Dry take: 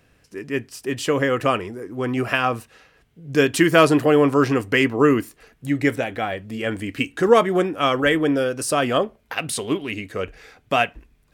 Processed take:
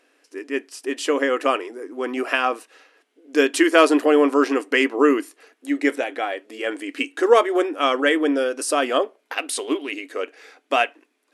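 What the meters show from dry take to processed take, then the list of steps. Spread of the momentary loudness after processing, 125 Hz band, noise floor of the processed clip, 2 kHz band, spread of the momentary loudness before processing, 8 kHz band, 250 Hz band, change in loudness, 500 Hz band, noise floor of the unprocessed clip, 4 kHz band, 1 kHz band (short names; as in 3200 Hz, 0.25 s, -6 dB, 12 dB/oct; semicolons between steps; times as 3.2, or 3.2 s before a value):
13 LU, under -35 dB, -69 dBFS, 0.0 dB, 13 LU, 0.0 dB, -1.0 dB, -0.5 dB, 0.0 dB, -60 dBFS, 0.0 dB, 0.0 dB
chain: brick-wall FIR band-pass 250–12000 Hz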